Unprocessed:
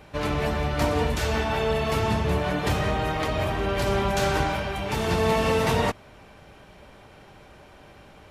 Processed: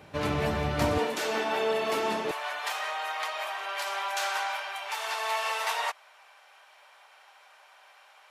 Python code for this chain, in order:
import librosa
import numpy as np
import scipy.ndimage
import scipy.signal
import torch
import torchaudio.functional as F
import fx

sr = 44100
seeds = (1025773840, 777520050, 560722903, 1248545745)

y = fx.highpass(x, sr, hz=fx.steps((0.0, 74.0), (0.98, 260.0), (2.31, 780.0)), slope=24)
y = y * librosa.db_to_amplitude(-2.0)